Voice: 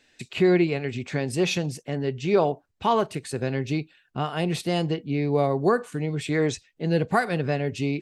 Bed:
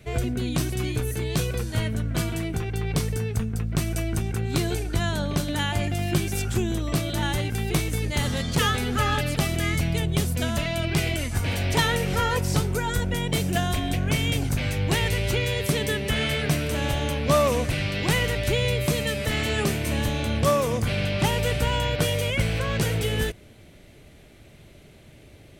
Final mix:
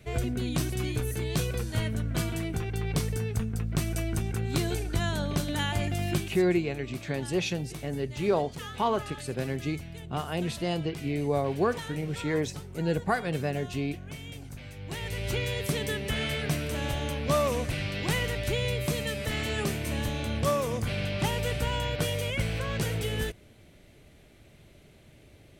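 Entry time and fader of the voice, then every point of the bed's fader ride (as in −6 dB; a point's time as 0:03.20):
5.95 s, −5.0 dB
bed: 0:06.12 −3.5 dB
0:06.47 −17.5 dB
0:14.75 −17.5 dB
0:15.33 −5.5 dB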